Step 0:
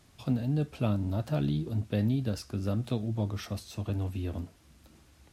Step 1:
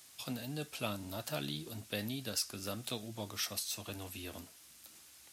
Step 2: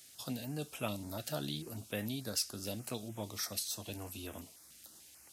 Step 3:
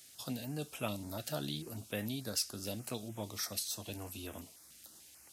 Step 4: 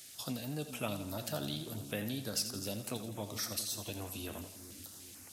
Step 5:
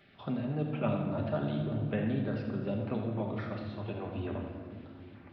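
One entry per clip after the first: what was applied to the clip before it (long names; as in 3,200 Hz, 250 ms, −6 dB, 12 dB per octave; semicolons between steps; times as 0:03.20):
spectral tilt +4.5 dB per octave; level −2.5 dB
notch on a step sequencer 6.8 Hz 1,000–4,400 Hz; level +1 dB
no processing that can be heard
in parallel at +2.5 dB: downward compressor, threshold −47 dBFS, peak gain reduction 16.5 dB; on the sum: echo with a time of its own for lows and highs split 390 Hz, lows 406 ms, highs 84 ms, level −10 dB; level −2.5 dB
Gaussian smoothing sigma 3.9 samples; convolution reverb RT60 1.6 s, pre-delay 5 ms, DRR 2 dB; level +5 dB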